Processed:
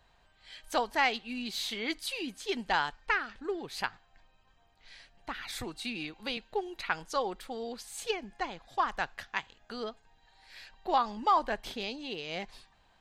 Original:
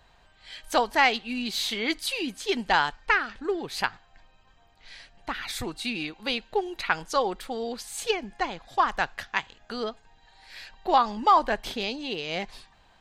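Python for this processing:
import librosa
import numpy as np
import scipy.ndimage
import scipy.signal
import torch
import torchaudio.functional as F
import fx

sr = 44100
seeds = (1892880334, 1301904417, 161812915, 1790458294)

y = fx.band_squash(x, sr, depth_pct=40, at=(5.52, 6.37))
y = y * 10.0 ** (-6.5 / 20.0)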